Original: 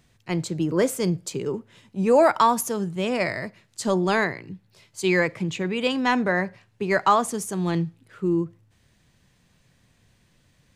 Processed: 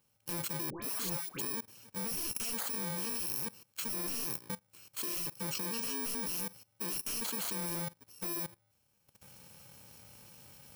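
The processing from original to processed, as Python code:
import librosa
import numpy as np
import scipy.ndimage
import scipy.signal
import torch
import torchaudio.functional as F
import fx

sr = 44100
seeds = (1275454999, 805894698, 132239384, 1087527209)

y = fx.bit_reversed(x, sr, seeds[0], block=64)
y = fx.recorder_agc(y, sr, target_db=-16.0, rise_db_per_s=10.0, max_gain_db=30)
y = scipy.signal.sosfilt(scipy.signal.butter(2, 69.0, 'highpass', fs=sr, output='sos'), y)
y = fx.low_shelf(y, sr, hz=280.0, db=-8.0)
y = 10.0 ** (-19.0 / 20.0) * (np.abs((y / 10.0 ** (-19.0 / 20.0) + 3.0) % 4.0 - 2.0) - 1.0)
y = fx.level_steps(y, sr, step_db=19)
y = fx.dispersion(y, sr, late='highs', ms=123.0, hz=1200.0, at=(0.7, 1.41))
y = y * librosa.db_to_amplitude(1.5)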